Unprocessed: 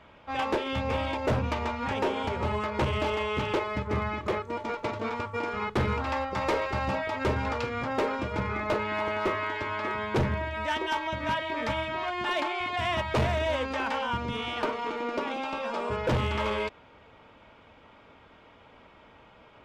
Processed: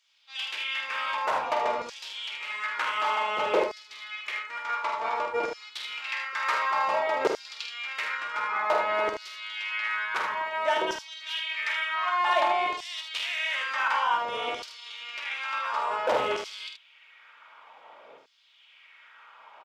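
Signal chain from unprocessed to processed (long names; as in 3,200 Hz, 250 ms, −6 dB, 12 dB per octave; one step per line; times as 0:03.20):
sub-octave generator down 1 octave, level 0 dB
auto-filter high-pass saw down 0.55 Hz 460–5,700 Hz
ambience of single reflections 48 ms −7 dB, 77 ms −7 dB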